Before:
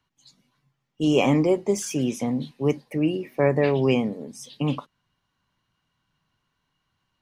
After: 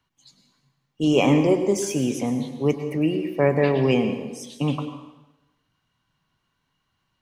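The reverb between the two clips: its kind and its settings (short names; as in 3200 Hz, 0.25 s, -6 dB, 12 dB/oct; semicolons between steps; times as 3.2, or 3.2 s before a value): plate-style reverb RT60 1 s, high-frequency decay 0.95×, pre-delay 90 ms, DRR 8 dB; gain +1 dB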